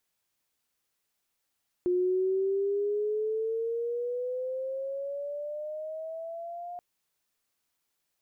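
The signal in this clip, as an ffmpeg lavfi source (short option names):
-f lavfi -i "aevalsrc='pow(10,(-23-13.5*t/4.93)/20)*sin(2*PI*356*4.93/(12*log(2)/12)*(exp(12*log(2)/12*t/4.93)-1))':d=4.93:s=44100"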